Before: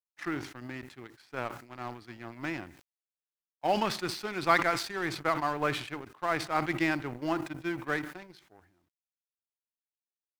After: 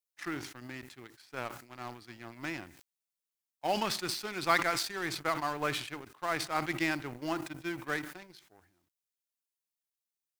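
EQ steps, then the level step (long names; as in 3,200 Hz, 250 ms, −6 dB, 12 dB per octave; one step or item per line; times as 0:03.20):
high-shelf EQ 3,500 Hz +9.5 dB
−4.0 dB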